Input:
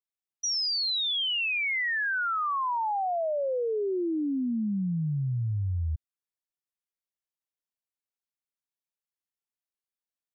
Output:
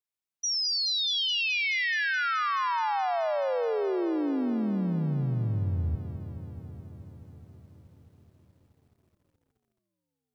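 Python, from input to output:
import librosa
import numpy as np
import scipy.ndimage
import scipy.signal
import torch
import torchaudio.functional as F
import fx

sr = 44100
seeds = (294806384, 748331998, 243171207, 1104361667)

y = fx.echo_tape(x, sr, ms=728, feedback_pct=60, wet_db=-22.0, lp_hz=2000.0, drive_db=21.0, wow_cents=21)
y = fx.echo_crushed(y, sr, ms=213, feedback_pct=80, bits=11, wet_db=-12.0)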